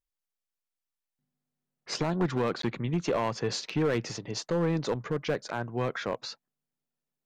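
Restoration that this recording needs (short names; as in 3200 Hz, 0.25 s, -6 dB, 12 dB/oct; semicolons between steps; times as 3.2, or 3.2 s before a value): clip repair -21 dBFS; interpolate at 2.62, 13 ms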